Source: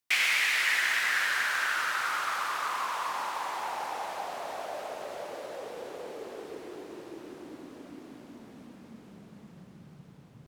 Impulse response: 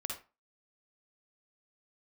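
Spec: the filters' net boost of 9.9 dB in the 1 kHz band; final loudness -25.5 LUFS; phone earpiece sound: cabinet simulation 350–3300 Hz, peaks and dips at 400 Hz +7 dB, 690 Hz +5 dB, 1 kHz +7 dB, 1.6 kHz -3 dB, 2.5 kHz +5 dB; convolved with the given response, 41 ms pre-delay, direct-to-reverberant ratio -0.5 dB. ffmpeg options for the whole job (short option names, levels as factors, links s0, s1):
-filter_complex "[0:a]equalizer=f=1000:t=o:g=6.5,asplit=2[s0][s1];[1:a]atrim=start_sample=2205,adelay=41[s2];[s1][s2]afir=irnorm=-1:irlink=0,volume=1[s3];[s0][s3]amix=inputs=2:normalize=0,highpass=350,equalizer=f=400:t=q:w=4:g=7,equalizer=f=690:t=q:w=4:g=5,equalizer=f=1000:t=q:w=4:g=7,equalizer=f=1600:t=q:w=4:g=-3,equalizer=f=2500:t=q:w=4:g=5,lowpass=f=3300:w=0.5412,lowpass=f=3300:w=1.3066,volume=0.631"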